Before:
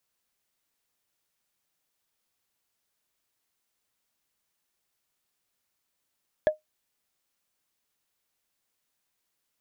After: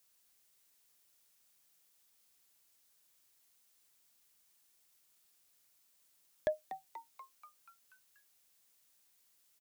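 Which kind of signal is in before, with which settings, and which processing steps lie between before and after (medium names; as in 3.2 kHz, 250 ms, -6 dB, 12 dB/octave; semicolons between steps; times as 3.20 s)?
wood hit, lowest mode 616 Hz, decay 0.14 s, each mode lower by 11.5 dB, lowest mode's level -13.5 dB
treble shelf 3.6 kHz +9.5 dB; peak limiter -22.5 dBFS; frequency-shifting echo 241 ms, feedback 60%, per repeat +150 Hz, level -11.5 dB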